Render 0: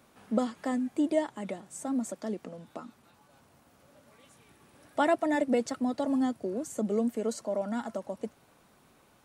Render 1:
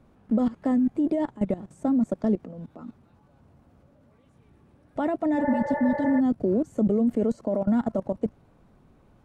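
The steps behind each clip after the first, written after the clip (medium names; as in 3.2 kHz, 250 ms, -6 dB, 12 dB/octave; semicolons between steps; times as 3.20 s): level held to a coarse grid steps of 18 dB; tilt EQ -4 dB/octave; spectral replace 5.42–6.17 s, 340–2300 Hz before; trim +7.5 dB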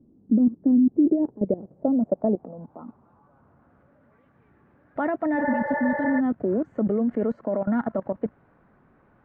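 bass shelf 90 Hz -11 dB; low-pass sweep 300 Hz -> 1.7 kHz, 0.63–3.91 s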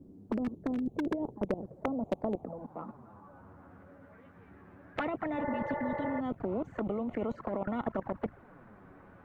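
touch-sensitive flanger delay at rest 11.6 ms, full sweep at -21.5 dBFS; hard clipper -13 dBFS, distortion -36 dB; spectrum-flattening compressor 2:1; trim -1 dB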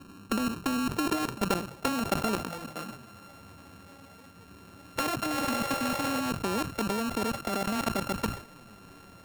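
sorted samples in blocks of 32 samples; decay stretcher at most 120 dB/s; trim +3.5 dB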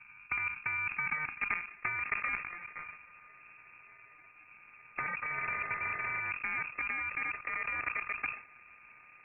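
frequency inversion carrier 2.6 kHz; trim -5.5 dB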